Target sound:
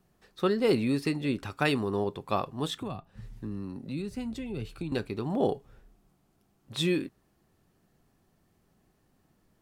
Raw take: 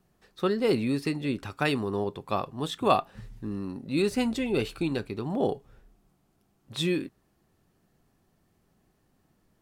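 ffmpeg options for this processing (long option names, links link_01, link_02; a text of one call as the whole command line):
ffmpeg -i in.wav -filter_complex "[0:a]asettb=1/sr,asplit=3[link_01][link_02][link_03];[link_01]atrim=end=2.774[link_04];[link_02]atrim=start=2.77:end=4.92,asetpts=PTS-STARTPTS,afade=type=in:duration=0.004:curve=qsin,afade=type=out:start_time=2.146:duration=0.004:curve=qsin,acrossover=split=180[link_05][link_06];[link_06]acompressor=threshold=-38dB:ratio=10[link_07];[link_05][link_07]amix=inputs=2:normalize=0[link_08];[link_03]atrim=start=4.916[link_09];[link_04][link_08]acrossfade=duration=0.004:curve1=hsin:curve2=qsin[link_10];[link_10][link_09]acrossfade=duration=0.004:curve1=qsin:curve2=hsin" out.wav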